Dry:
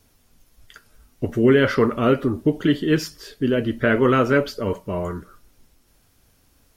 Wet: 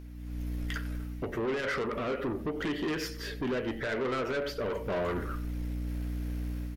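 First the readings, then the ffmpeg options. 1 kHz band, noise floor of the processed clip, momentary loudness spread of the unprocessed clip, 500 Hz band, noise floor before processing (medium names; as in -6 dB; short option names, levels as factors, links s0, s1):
-10.0 dB, -41 dBFS, 11 LU, -12.0 dB, -61 dBFS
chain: -filter_complex "[0:a]aeval=exprs='val(0)+0.0141*(sin(2*PI*60*n/s)+sin(2*PI*2*60*n/s)/2+sin(2*PI*3*60*n/s)/3+sin(2*PI*4*60*n/s)/4+sin(2*PI*5*60*n/s)/5)':c=same,equalizer=f=125:t=o:w=1:g=-6,equalizer=f=500:t=o:w=1:g=6,equalizer=f=2000:t=o:w=1:g=9,equalizer=f=8000:t=o:w=1:g=-5,dynaudnorm=f=130:g=5:m=4.47,asplit=2[s0][s1];[s1]adelay=93.29,volume=0.112,highshelf=f=4000:g=-2.1[s2];[s0][s2]amix=inputs=2:normalize=0,alimiter=limit=0.266:level=0:latency=1:release=166,asoftclip=type=tanh:threshold=0.0708,bandreject=f=46.25:t=h:w=4,bandreject=f=92.5:t=h:w=4,bandreject=f=138.75:t=h:w=4,bandreject=f=185:t=h:w=4,bandreject=f=231.25:t=h:w=4,bandreject=f=277.5:t=h:w=4,bandreject=f=323.75:t=h:w=4,bandreject=f=370:t=h:w=4,bandreject=f=416.25:t=h:w=4,bandreject=f=462.5:t=h:w=4,bandreject=f=508.75:t=h:w=4,bandreject=f=555:t=h:w=4,bandreject=f=601.25:t=h:w=4,bandreject=f=647.5:t=h:w=4,bandreject=f=693.75:t=h:w=4,bandreject=f=740:t=h:w=4,bandreject=f=786.25:t=h:w=4,bandreject=f=832.5:t=h:w=4,volume=0.596"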